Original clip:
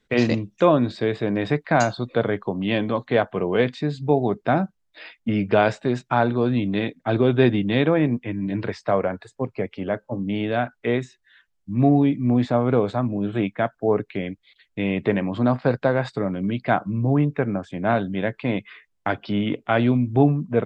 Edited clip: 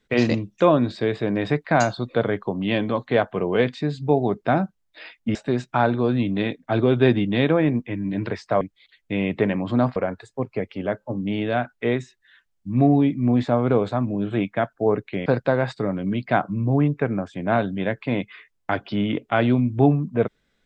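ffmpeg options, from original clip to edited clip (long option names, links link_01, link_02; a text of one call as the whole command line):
ffmpeg -i in.wav -filter_complex "[0:a]asplit=5[link_01][link_02][link_03][link_04][link_05];[link_01]atrim=end=5.352[link_06];[link_02]atrim=start=5.718:end=8.982[link_07];[link_03]atrim=start=14.278:end=15.632[link_08];[link_04]atrim=start=8.978:end=14.282[link_09];[link_05]atrim=start=15.628[link_10];[link_06][link_07]acrossfade=duration=0.004:curve1=hsin:curve2=hsin[link_11];[link_11][link_08]acrossfade=duration=0.004:curve1=hsin:curve2=hsin[link_12];[link_12][link_09]acrossfade=duration=0.004:curve1=hsin:curve2=hsin[link_13];[link_13][link_10]acrossfade=duration=0.004:curve1=hsin:curve2=hsin" out.wav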